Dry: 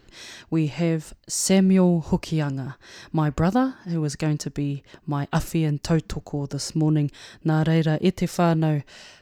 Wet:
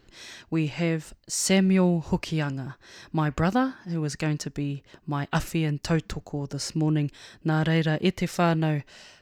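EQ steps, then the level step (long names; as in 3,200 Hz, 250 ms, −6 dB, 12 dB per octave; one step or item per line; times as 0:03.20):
dynamic equaliser 2,200 Hz, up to +7 dB, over −42 dBFS, Q 0.73
−3.5 dB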